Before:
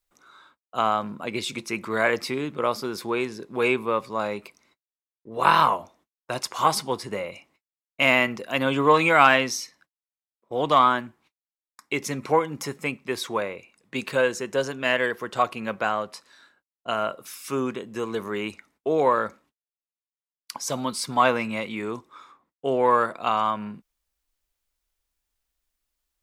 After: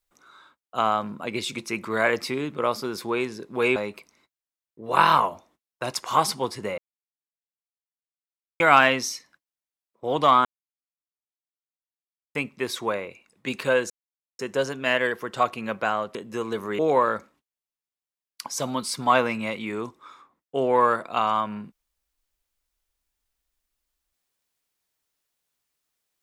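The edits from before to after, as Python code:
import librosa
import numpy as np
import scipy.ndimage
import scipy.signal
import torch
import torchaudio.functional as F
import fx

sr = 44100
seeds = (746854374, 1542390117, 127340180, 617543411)

y = fx.edit(x, sr, fx.cut(start_s=3.76, length_s=0.48),
    fx.silence(start_s=7.26, length_s=1.82),
    fx.silence(start_s=10.93, length_s=1.9),
    fx.insert_silence(at_s=14.38, length_s=0.49),
    fx.cut(start_s=16.14, length_s=1.63),
    fx.cut(start_s=18.41, length_s=0.48), tone=tone)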